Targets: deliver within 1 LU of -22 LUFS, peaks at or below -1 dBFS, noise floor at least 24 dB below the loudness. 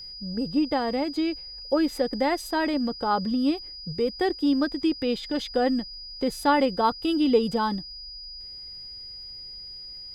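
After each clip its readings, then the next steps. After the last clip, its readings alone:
tick rate 18 per s; steady tone 4.9 kHz; tone level -38 dBFS; loudness -25.5 LUFS; peak level -9.5 dBFS; loudness target -22.0 LUFS
-> de-click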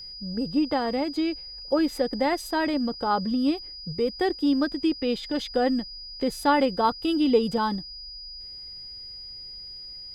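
tick rate 0.20 per s; steady tone 4.9 kHz; tone level -38 dBFS
-> band-stop 4.9 kHz, Q 30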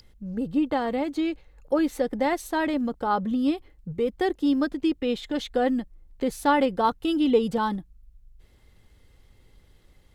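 steady tone not found; loudness -26.0 LUFS; peak level -10.0 dBFS; loudness target -22.0 LUFS
-> trim +4 dB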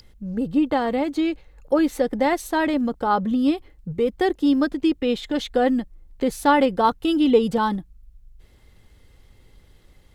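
loudness -22.0 LUFS; peak level -6.0 dBFS; noise floor -54 dBFS

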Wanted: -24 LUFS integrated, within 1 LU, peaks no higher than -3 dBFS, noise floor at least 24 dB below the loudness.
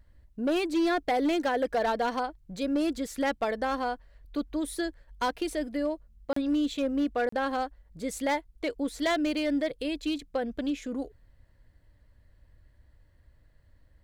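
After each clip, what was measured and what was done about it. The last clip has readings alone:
clipped samples 1.4%; clipping level -21.5 dBFS; dropouts 2; longest dropout 34 ms; loudness -30.0 LUFS; peak level -21.5 dBFS; loudness target -24.0 LUFS
-> clip repair -21.5 dBFS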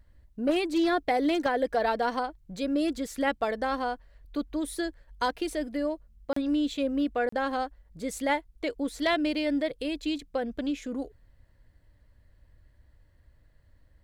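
clipped samples 0.0%; dropouts 2; longest dropout 34 ms
-> interpolate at 6.33/7.29 s, 34 ms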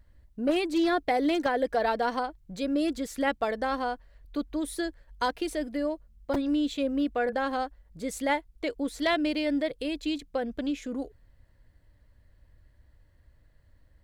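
dropouts 0; loudness -29.5 LUFS; peak level -12.5 dBFS; loudness target -24.0 LUFS
-> trim +5.5 dB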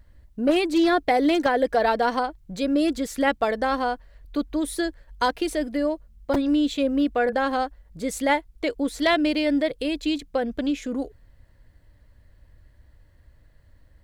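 loudness -24.0 LUFS; peak level -7.0 dBFS; noise floor -56 dBFS

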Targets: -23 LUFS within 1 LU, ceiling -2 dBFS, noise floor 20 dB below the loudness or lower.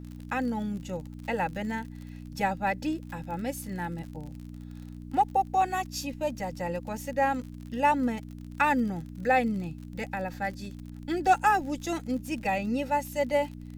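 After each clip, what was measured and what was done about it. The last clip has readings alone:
tick rate 47 per s; hum 60 Hz; highest harmonic 300 Hz; hum level -39 dBFS; loudness -29.5 LUFS; peak level -10.5 dBFS; loudness target -23.0 LUFS
-> de-click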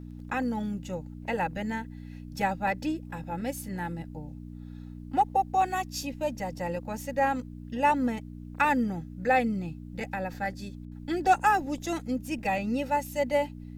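tick rate 0.44 per s; hum 60 Hz; highest harmonic 300 Hz; hum level -39 dBFS
-> de-hum 60 Hz, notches 5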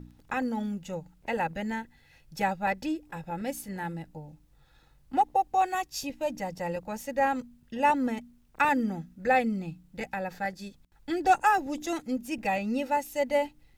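hum not found; loudness -30.0 LUFS; peak level -10.5 dBFS; loudness target -23.0 LUFS
-> trim +7 dB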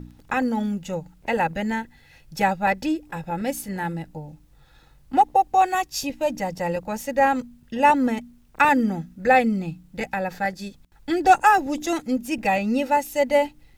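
loudness -23.0 LUFS; peak level -3.5 dBFS; noise floor -54 dBFS

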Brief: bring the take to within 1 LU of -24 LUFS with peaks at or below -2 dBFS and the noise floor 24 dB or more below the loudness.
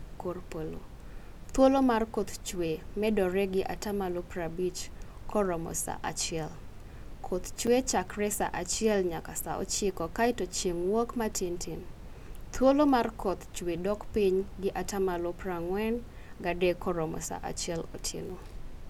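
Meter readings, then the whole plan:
dropouts 2; longest dropout 5.7 ms; noise floor -46 dBFS; noise floor target -55 dBFS; loudness -31.0 LUFS; peak level -10.5 dBFS; loudness target -24.0 LUFS
-> interpolate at 7.67/18.29 s, 5.7 ms; noise print and reduce 9 dB; trim +7 dB

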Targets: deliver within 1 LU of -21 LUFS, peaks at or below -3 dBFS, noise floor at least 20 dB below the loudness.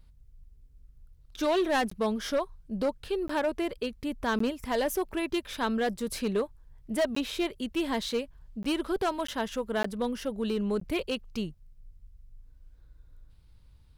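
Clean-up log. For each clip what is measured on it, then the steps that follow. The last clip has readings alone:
clipped samples 1.5%; clipping level -22.0 dBFS; dropouts 8; longest dropout 14 ms; loudness -31.0 LUFS; peak level -22.0 dBFS; loudness target -21.0 LUFS
-> clip repair -22 dBFS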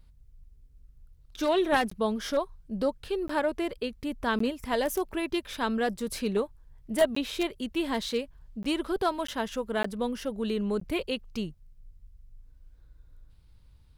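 clipped samples 0.0%; dropouts 8; longest dropout 14 ms
-> interpolate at 1.90/3.28/4.39/7.15/8.63/9.27/9.83/10.80 s, 14 ms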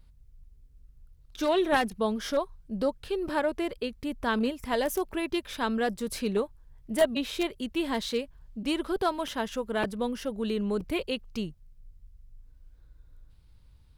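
dropouts 0; loudness -30.0 LUFS; peak level -13.0 dBFS; loudness target -21.0 LUFS
-> trim +9 dB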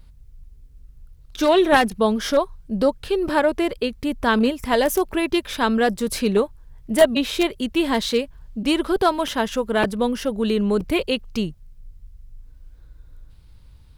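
loudness -21.0 LUFS; peak level -4.0 dBFS; noise floor -48 dBFS

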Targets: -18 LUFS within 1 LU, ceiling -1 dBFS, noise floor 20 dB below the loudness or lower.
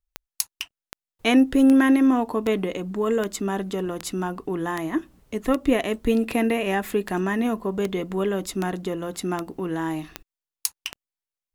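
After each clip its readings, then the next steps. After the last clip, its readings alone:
clicks found 15; loudness -24.0 LUFS; peak level -3.5 dBFS; loudness target -18.0 LUFS
-> de-click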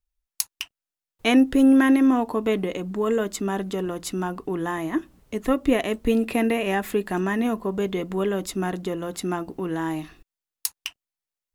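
clicks found 0; loudness -24.0 LUFS; peak level -3.5 dBFS; loudness target -18.0 LUFS
-> trim +6 dB; peak limiter -1 dBFS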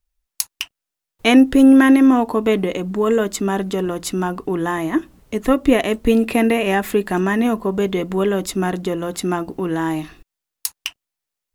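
loudness -18.0 LUFS; peak level -1.0 dBFS; noise floor -84 dBFS

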